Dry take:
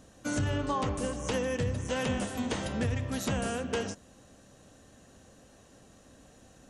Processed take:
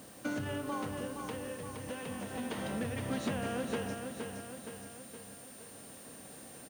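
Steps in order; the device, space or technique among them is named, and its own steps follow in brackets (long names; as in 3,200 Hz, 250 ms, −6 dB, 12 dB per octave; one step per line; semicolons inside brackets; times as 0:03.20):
medium wave at night (band-pass filter 140–3,600 Hz; downward compressor, threshold −37 dBFS, peak gain reduction 9.5 dB; amplitude tremolo 0.31 Hz, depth 62%; steady tone 9,000 Hz −62 dBFS; white noise bed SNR 17 dB)
repeating echo 469 ms, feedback 56%, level −6 dB
level +4 dB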